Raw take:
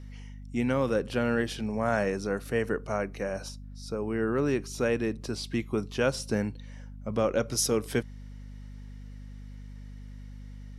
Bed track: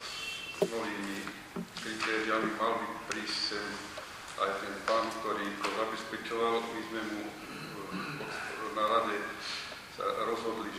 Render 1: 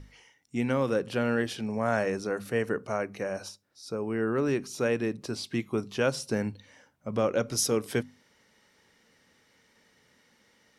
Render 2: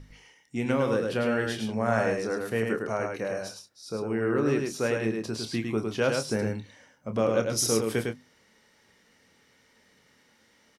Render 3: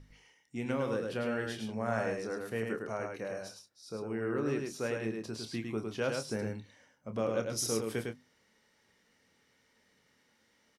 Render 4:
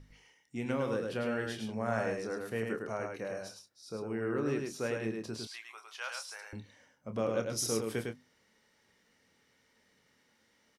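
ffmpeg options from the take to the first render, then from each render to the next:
-af "bandreject=f=50:t=h:w=6,bandreject=f=100:t=h:w=6,bandreject=f=150:t=h:w=6,bandreject=f=200:t=h:w=6,bandreject=f=250:t=h:w=6"
-filter_complex "[0:a]asplit=2[a][b];[b]adelay=27,volume=-9.5dB[c];[a][c]amix=inputs=2:normalize=0,asplit=2[d][e];[e]aecho=0:1:105:0.631[f];[d][f]amix=inputs=2:normalize=0"
-af "volume=-7.5dB"
-filter_complex "[0:a]asettb=1/sr,asplit=3[a][b][c];[a]atrim=end=5.474[d];[b]atrim=start=5.47:end=6.53,asetpts=PTS-STARTPTS,afade=t=in:d=0.004:c=qsin,afade=t=out:st=1.056:d=0.004:c=qsin,highpass=f=890:w=0.5412,highpass=f=890:w=1.3066[e];[c]atrim=start=6.526[f];[d][e]acrossfade=d=0.004:c1=hsin:c2=qsin[g];[g][f]acrossfade=d=0.004:c1=qsin:c2=hsin"

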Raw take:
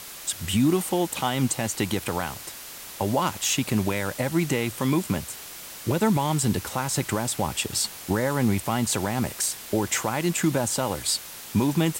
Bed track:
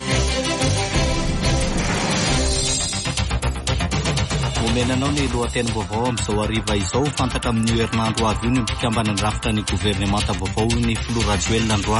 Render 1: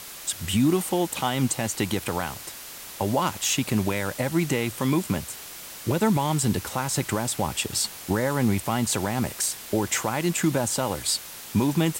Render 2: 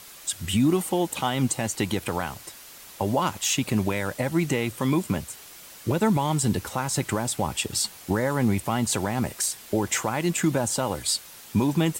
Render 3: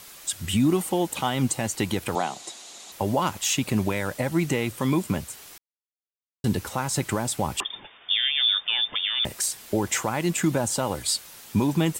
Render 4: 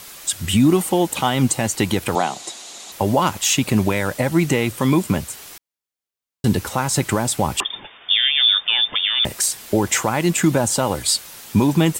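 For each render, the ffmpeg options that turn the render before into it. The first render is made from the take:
-af anull
-af "afftdn=nr=6:nf=-40"
-filter_complex "[0:a]asettb=1/sr,asplit=3[a][b][c];[a]atrim=end=2.154[d];[b]atrim=start=2.15:end=2.92,asetpts=PTS-STARTPTS,afade=t=in:d=0.004:c=qsin,afade=t=out:st=0.766:d=0.004:c=qsin,highpass=f=170:w=0.5412,highpass=f=170:w=1.3066,equalizer=f=360:t=q:w=4:g=4,equalizer=f=730:t=q:w=4:g=9,equalizer=f=1.6k:t=q:w=4:g=-4,equalizer=f=3.8k:t=q:w=4:g=9,equalizer=f=6.9k:t=q:w=4:g=9,lowpass=f=9.4k:w=0.5412,lowpass=f=9.4k:w=1.3066[e];[c]atrim=start=2.916[f];[d][e]acrossfade=d=0.004:c1=hsin:c2=qsin[g];[g][f]acrossfade=d=0.004:c1=qsin:c2=hsin,asettb=1/sr,asplit=3[h][i][j];[h]atrim=end=7.604[k];[i]atrim=start=7.6:end=9.25,asetpts=PTS-STARTPTS,afade=t=in:d=0.004:c=qsin,afade=t=out:st=1.646:d=0.004:c=qsin,lowpass=f=3.1k:t=q:w=0.5098,lowpass=f=3.1k:t=q:w=0.6013,lowpass=f=3.1k:t=q:w=0.9,lowpass=f=3.1k:t=q:w=2.563,afreqshift=-3700[l];[j]atrim=start=9.246[m];[k][l]acrossfade=d=0.004:c1=hsin:c2=qsin[n];[n][m]acrossfade=d=0.004:c1=qsin:c2=hsin,asplit=3[o][p][q];[o]atrim=end=5.58,asetpts=PTS-STARTPTS,afade=t=out:st=5.576:d=0.004:c=hsin[r];[p]atrim=start=5.58:end=6.44,asetpts=PTS-STARTPTS,volume=0[s];[q]atrim=start=6.44,asetpts=PTS-STARTPTS,afade=t=in:d=0.004:c=hsin[t];[r][s][t]concat=n=3:v=0:a=1"
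-af "volume=6.5dB"

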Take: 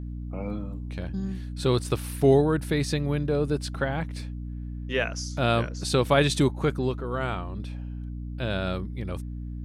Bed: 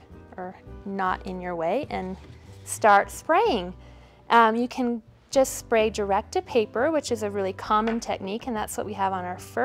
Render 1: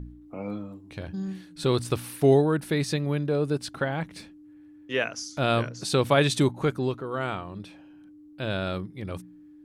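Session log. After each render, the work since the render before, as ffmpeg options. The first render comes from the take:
-af "bandreject=f=60:t=h:w=4,bandreject=f=120:t=h:w=4,bandreject=f=180:t=h:w=4,bandreject=f=240:t=h:w=4"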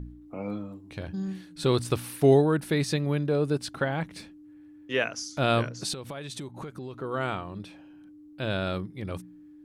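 -filter_complex "[0:a]asettb=1/sr,asplit=3[a][b][c];[a]atrim=end=5.934[d];[b]atrim=start=5.93:end=6.99,asetpts=PTS-STARTPTS,afade=t=in:d=0.004:c=qsin,afade=t=out:st=1.056:d=0.004:c=qsin,acompressor=threshold=-34dB:ratio=12:attack=3.2:release=140:knee=1:detection=peak[e];[c]atrim=start=6.986[f];[d][e]acrossfade=d=0.004:c1=hsin:c2=qsin[g];[g][f]acrossfade=d=0.004:c1=qsin:c2=hsin"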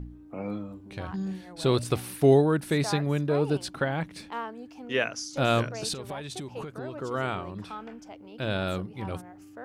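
-filter_complex "[1:a]volume=-18dB[a];[0:a][a]amix=inputs=2:normalize=0"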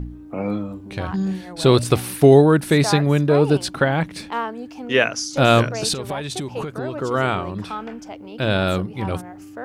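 -af "volume=9.5dB,alimiter=limit=-2dB:level=0:latency=1"

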